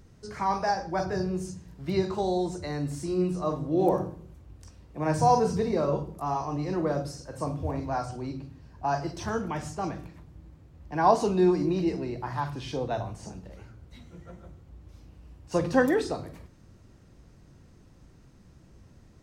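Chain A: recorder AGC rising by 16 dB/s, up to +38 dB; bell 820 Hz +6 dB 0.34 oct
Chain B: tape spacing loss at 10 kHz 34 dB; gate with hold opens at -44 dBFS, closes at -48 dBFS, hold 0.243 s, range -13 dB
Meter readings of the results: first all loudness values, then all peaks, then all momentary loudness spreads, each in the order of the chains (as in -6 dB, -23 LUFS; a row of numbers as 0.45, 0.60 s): -23.0, -30.0 LUFS; -4.5, -8.5 dBFS; 13, 21 LU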